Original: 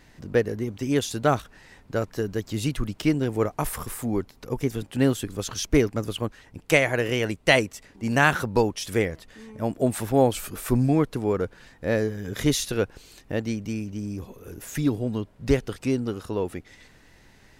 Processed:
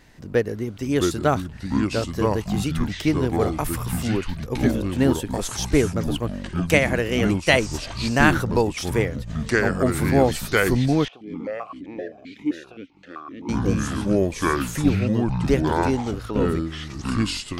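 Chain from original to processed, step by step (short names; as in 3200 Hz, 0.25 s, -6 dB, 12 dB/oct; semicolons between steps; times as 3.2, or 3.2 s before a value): echoes that change speed 0.548 s, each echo -5 st, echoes 3; 11.08–13.49 vowel sequencer 7.7 Hz; gain +1 dB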